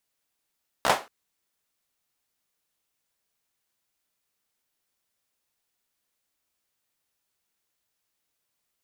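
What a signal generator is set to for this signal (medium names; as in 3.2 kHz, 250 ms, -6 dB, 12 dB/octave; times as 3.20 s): hand clap length 0.23 s, apart 15 ms, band 760 Hz, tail 0.27 s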